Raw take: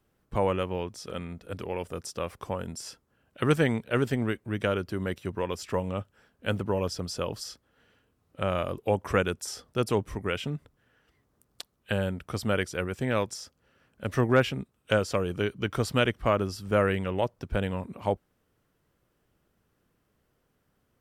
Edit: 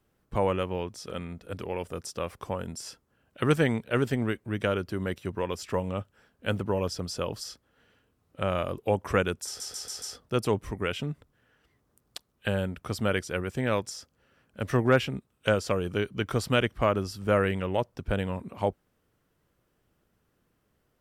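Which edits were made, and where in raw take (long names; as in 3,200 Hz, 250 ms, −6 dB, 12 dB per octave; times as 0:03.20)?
0:09.46: stutter 0.14 s, 5 plays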